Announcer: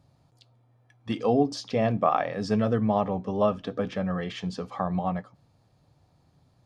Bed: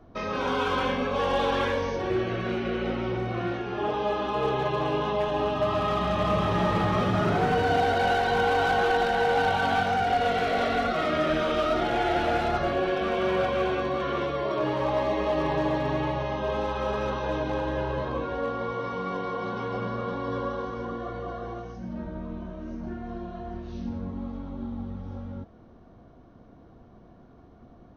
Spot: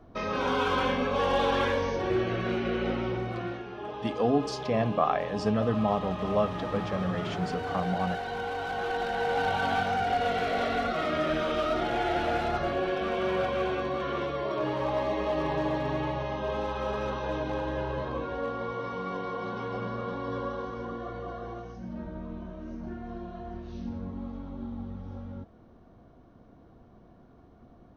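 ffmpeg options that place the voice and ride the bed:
ffmpeg -i stem1.wav -i stem2.wav -filter_complex "[0:a]adelay=2950,volume=-2.5dB[link_01];[1:a]volume=6.5dB,afade=type=out:start_time=2.93:duration=0.87:silence=0.334965,afade=type=in:start_time=8.66:duration=0.94:silence=0.446684[link_02];[link_01][link_02]amix=inputs=2:normalize=0" out.wav

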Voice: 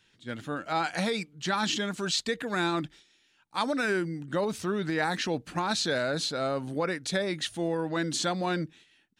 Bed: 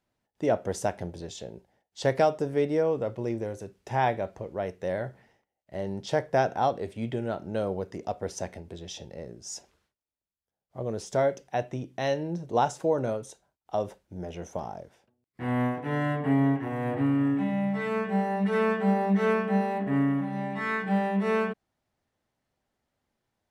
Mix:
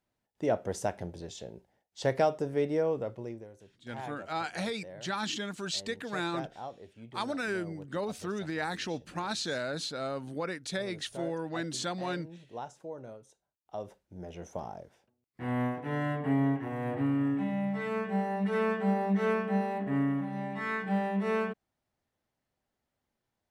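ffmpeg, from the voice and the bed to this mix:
ffmpeg -i stem1.wav -i stem2.wav -filter_complex "[0:a]adelay=3600,volume=-5.5dB[link_01];[1:a]volume=9dB,afade=type=out:start_time=2.93:duration=0.55:silence=0.223872,afade=type=in:start_time=13.37:duration=1.25:silence=0.237137[link_02];[link_01][link_02]amix=inputs=2:normalize=0" out.wav

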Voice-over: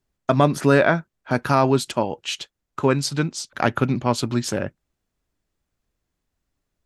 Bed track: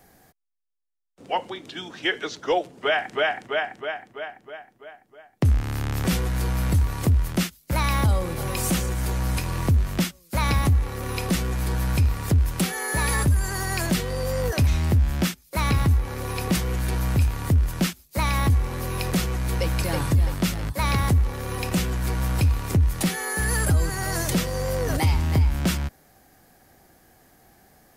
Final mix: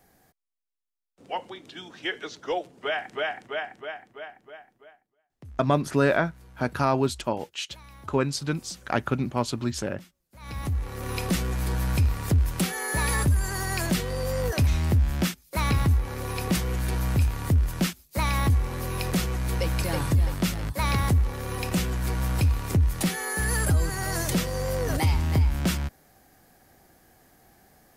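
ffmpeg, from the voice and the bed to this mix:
ffmpeg -i stem1.wav -i stem2.wav -filter_complex "[0:a]adelay=5300,volume=-5.5dB[link_01];[1:a]volume=18dB,afade=type=out:start_time=4.74:duration=0.41:silence=0.1,afade=type=in:start_time=10.39:duration=0.74:silence=0.0630957[link_02];[link_01][link_02]amix=inputs=2:normalize=0" out.wav

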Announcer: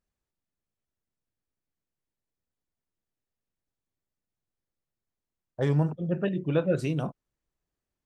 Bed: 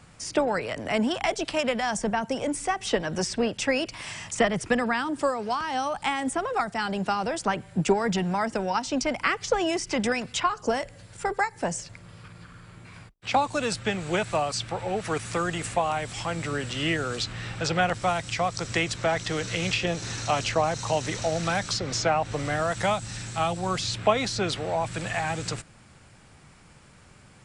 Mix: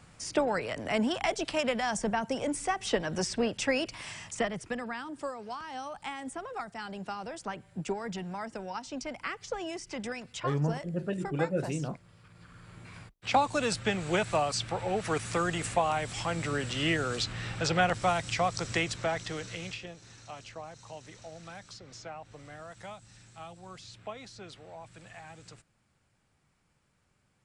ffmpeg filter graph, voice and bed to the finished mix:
ffmpeg -i stem1.wav -i stem2.wav -filter_complex "[0:a]adelay=4850,volume=-5dB[link_01];[1:a]volume=6dB,afade=type=out:start_time=3.87:duration=0.82:silence=0.398107,afade=type=in:start_time=12.26:duration=0.56:silence=0.334965,afade=type=out:start_time=18.47:duration=1.48:silence=0.133352[link_02];[link_01][link_02]amix=inputs=2:normalize=0" out.wav

